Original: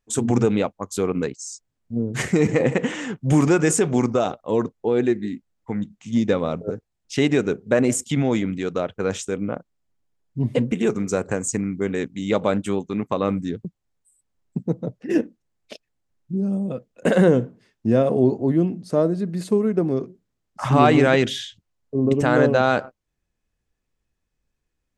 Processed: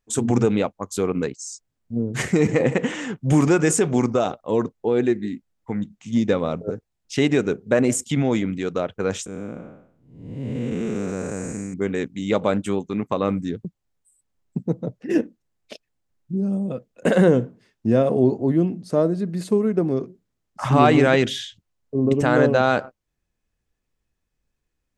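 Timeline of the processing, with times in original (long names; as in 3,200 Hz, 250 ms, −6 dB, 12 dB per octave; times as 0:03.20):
0:09.26–0:11.74: spectrum smeared in time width 379 ms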